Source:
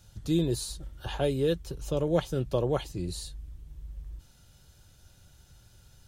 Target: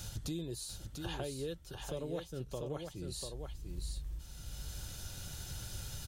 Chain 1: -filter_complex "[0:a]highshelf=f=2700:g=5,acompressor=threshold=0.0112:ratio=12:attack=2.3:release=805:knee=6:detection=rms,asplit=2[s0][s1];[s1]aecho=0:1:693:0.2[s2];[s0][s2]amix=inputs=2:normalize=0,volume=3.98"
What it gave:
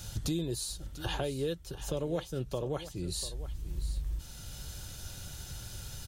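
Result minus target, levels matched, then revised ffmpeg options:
compression: peak gain reduction -7 dB; echo-to-direct -8.5 dB
-filter_complex "[0:a]highshelf=f=2700:g=5,acompressor=threshold=0.00473:ratio=12:attack=2.3:release=805:knee=6:detection=rms,asplit=2[s0][s1];[s1]aecho=0:1:693:0.531[s2];[s0][s2]amix=inputs=2:normalize=0,volume=3.98"

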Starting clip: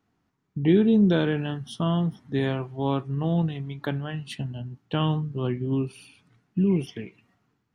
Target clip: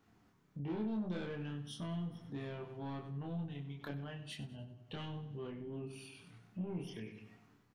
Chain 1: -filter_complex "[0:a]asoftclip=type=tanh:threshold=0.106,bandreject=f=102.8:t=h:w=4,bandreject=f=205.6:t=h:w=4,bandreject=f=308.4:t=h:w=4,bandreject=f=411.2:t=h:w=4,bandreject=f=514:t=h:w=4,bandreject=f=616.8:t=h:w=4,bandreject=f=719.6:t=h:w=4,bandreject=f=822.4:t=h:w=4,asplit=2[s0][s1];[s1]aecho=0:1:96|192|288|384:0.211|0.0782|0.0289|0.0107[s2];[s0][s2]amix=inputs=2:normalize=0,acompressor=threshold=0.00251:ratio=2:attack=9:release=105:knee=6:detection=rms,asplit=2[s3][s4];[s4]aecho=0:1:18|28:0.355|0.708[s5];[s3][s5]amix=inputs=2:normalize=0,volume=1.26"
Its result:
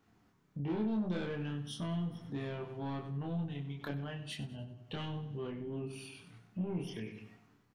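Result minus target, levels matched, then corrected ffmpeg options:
compression: peak gain reduction -4 dB
-filter_complex "[0:a]asoftclip=type=tanh:threshold=0.106,bandreject=f=102.8:t=h:w=4,bandreject=f=205.6:t=h:w=4,bandreject=f=308.4:t=h:w=4,bandreject=f=411.2:t=h:w=4,bandreject=f=514:t=h:w=4,bandreject=f=616.8:t=h:w=4,bandreject=f=719.6:t=h:w=4,bandreject=f=822.4:t=h:w=4,asplit=2[s0][s1];[s1]aecho=0:1:96|192|288|384:0.211|0.0782|0.0289|0.0107[s2];[s0][s2]amix=inputs=2:normalize=0,acompressor=threshold=0.001:ratio=2:attack=9:release=105:knee=6:detection=rms,asplit=2[s3][s4];[s4]aecho=0:1:18|28:0.355|0.708[s5];[s3][s5]amix=inputs=2:normalize=0,volume=1.26"

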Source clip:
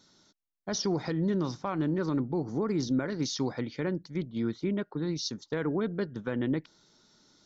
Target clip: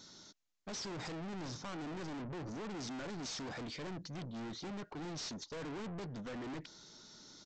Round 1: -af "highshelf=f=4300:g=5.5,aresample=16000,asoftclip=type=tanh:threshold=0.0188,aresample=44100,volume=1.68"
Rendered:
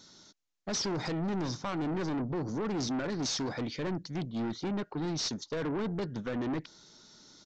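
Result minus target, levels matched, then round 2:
saturation: distortion -5 dB
-af "highshelf=f=4300:g=5.5,aresample=16000,asoftclip=type=tanh:threshold=0.00473,aresample=44100,volume=1.68"

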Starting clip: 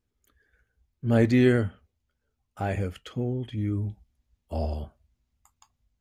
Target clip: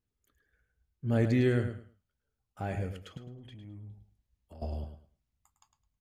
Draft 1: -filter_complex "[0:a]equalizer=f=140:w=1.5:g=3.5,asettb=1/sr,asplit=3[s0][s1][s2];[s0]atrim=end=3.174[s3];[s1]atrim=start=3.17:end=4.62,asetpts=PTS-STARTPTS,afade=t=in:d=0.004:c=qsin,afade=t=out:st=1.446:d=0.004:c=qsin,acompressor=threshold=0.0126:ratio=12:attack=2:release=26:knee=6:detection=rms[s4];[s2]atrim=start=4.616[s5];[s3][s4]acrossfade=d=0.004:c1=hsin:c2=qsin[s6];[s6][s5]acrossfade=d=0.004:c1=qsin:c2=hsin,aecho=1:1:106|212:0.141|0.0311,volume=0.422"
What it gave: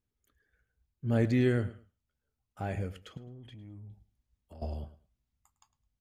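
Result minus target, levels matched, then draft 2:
echo-to-direct -8 dB
-filter_complex "[0:a]equalizer=f=140:w=1.5:g=3.5,asettb=1/sr,asplit=3[s0][s1][s2];[s0]atrim=end=3.174[s3];[s1]atrim=start=3.17:end=4.62,asetpts=PTS-STARTPTS,afade=t=in:d=0.004:c=qsin,afade=t=out:st=1.446:d=0.004:c=qsin,acompressor=threshold=0.0126:ratio=12:attack=2:release=26:knee=6:detection=rms[s4];[s2]atrim=start=4.616[s5];[s3][s4]acrossfade=d=0.004:c1=hsin:c2=qsin[s6];[s6][s5]acrossfade=d=0.004:c1=qsin:c2=hsin,aecho=1:1:106|212|318:0.355|0.0781|0.0172,volume=0.422"

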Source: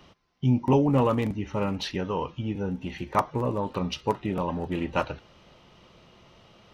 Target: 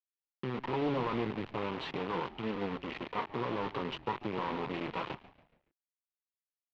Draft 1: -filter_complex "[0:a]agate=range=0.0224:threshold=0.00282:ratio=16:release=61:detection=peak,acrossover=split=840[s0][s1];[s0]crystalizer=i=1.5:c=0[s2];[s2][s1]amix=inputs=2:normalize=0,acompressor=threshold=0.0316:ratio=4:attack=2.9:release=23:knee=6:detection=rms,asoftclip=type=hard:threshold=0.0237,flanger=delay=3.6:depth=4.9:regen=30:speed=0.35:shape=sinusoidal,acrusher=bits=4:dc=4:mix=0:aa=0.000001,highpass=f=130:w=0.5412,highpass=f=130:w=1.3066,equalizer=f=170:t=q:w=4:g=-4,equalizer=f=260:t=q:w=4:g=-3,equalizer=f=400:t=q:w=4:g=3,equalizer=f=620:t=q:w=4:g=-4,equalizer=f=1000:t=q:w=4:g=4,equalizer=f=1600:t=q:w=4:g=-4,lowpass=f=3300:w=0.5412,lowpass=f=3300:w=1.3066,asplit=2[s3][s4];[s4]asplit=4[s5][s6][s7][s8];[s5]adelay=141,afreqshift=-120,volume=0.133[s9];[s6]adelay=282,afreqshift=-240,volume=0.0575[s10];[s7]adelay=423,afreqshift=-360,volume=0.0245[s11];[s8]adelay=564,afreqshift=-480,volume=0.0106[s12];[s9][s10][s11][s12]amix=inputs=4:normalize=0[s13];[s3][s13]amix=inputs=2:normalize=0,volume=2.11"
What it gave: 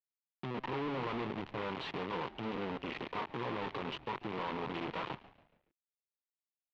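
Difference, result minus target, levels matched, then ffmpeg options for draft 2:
hard clipper: distortion +14 dB
-filter_complex "[0:a]agate=range=0.0224:threshold=0.00282:ratio=16:release=61:detection=peak,acrossover=split=840[s0][s1];[s0]crystalizer=i=1.5:c=0[s2];[s2][s1]amix=inputs=2:normalize=0,acompressor=threshold=0.0316:ratio=4:attack=2.9:release=23:knee=6:detection=rms,asoftclip=type=hard:threshold=0.0501,flanger=delay=3.6:depth=4.9:regen=30:speed=0.35:shape=sinusoidal,acrusher=bits=4:dc=4:mix=0:aa=0.000001,highpass=f=130:w=0.5412,highpass=f=130:w=1.3066,equalizer=f=170:t=q:w=4:g=-4,equalizer=f=260:t=q:w=4:g=-3,equalizer=f=400:t=q:w=4:g=3,equalizer=f=620:t=q:w=4:g=-4,equalizer=f=1000:t=q:w=4:g=4,equalizer=f=1600:t=q:w=4:g=-4,lowpass=f=3300:w=0.5412,lowpass=f=3300:w=1.3066,asplit=2[s3][s4];[s4]asplit=4[s5][s6][s7][s8];[s5]adelay=141,afreqshift=-120,volume=0.133[s9];[s6]adelay=282,afreqshift=-240,volume=0.0575[s10];[s7]adelay=423,afreqshift=-360,volume=0.0245[s11];[s8]adelay=564,afreqshift=-480,volume=0.0106[s12];[s9][s10][s11][s12]amix=inputs=4:normalize=0[s13];[s3][s13]amix=inputs=2:normalize=0,volume=2.11"

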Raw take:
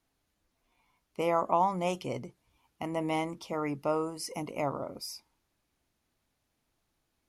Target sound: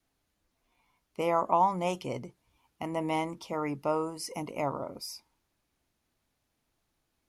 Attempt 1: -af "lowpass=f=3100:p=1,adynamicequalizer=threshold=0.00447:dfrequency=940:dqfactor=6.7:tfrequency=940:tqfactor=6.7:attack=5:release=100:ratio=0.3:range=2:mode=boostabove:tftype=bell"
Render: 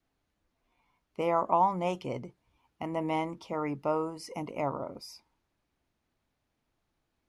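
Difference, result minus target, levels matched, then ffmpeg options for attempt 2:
4 kHz band -4.0 dB
-af "adynamicequalizer=threshold=0.00447:dfrequency=940:dqfactor=6.7:tfrequency=940:tqfactor=6.7:attack=5:release=100:ratio=0.3:range=2:mode=boostabove:tftype=bell"

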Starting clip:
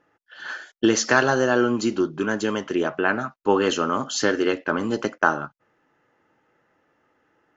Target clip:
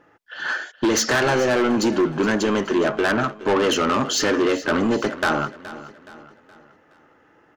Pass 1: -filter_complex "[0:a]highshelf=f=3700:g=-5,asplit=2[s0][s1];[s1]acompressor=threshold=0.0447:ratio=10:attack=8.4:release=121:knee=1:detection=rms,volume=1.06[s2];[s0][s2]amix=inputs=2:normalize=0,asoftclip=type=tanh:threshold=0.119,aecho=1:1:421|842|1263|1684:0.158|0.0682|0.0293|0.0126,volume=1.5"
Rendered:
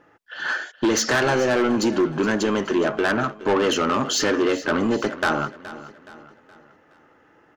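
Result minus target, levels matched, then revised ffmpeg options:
compression: peak gain reduction +7 dB
-filter_complex "[0:a]highshelf=f=3700:g=-5,asplit=2[s0][s1];[s1]acompressor=threshold=0.112:ratio=10:attack=8.4:release=121:knee=1:detection=rms,volume=1.06[s2];[s0][s2]amix=inputs=2:normalize=0,asoftclip=type=tanh:threshold=0.119,aecho=1:1:421|842|1263|1684:0.158|0.0682|0.0293|0.0126,volume=1.5"

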